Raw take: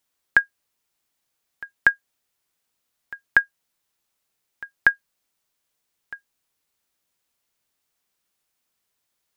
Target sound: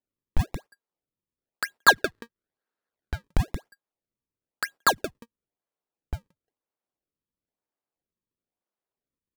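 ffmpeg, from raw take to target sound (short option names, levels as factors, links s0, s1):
-filter_complex "[0:a]highshelf=f=2700:g=-9.5,asplit=2[s0][s1];[s1]adelay=177,lowpass=f=1300:p=1,volume=0.1,asplit=2[s2][s3];[s3]adelay=177,lowpass=f=1300:p=1,volume=0.27[s4];[s0][s2][s4]amix=inputs=3:normalize=0,acrossover=split=150|780[s5][s6][s7];[s6]acontrast=77[s8];[s7]asoftclip=type=tanh:threshold=0.168[s9];[s5][s8][s9]amix=inputs=3:normalize=0,asplit=2[s10][s11];[s11]highpass=f=720:p=1,volume=7.94,asoftclip=type=tanh:threshold=0.355[s12];[s10][s12]amix=inputs=2:normalize=0,lowpass=f=1100:p=1,volume=0.501,acrusher=samples=35:mix=1:aa=0.000001:lfo=1:lforange=56:lforate=1,asettb=1/sr,asplit=3[s13][s14][s15];[s13]atrim=end=1.884[s16];[s14]atrim=start=1.88:end=3.24,asetpts=PTS-STARTPTS,afade=t=in:d=0.004:c=qsin,afade=t=out:st=1.356:d=0.004:c=qsin,equalizer=f=400:t=o:w=0.67:g=4,equalizer=f=1600:t=o:w=0.67:g=12,equalizer=f=4000:t=o:w=0.67:g=7[s17];[s15]atrim=start=3.236[s18];[s16][s17]acrossfade=d=0.004:c1=hsin:c2=qsin[s19];[s19][s18]acrossfade=d=0.004:c1=qsin:c2=hsin,agate=range=0.0891:threshold=0.00562:ratio=16:detection=peak,volume=1.41"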